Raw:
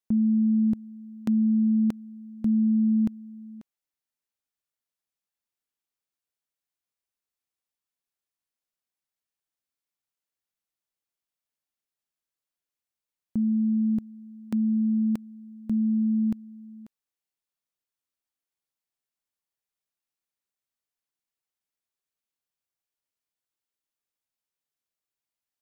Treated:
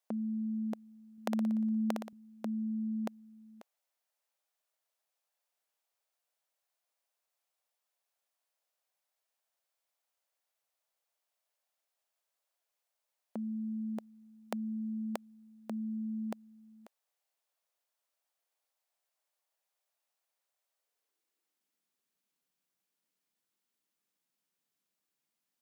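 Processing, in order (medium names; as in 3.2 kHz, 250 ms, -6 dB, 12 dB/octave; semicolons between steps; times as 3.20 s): high-pass sweep 620 Hz -> 190 Hz, 20.68–21.90 s; 1.12–2.13 s: flutter echo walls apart 10.1 m, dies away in 0.69 s; trim +3.5 dB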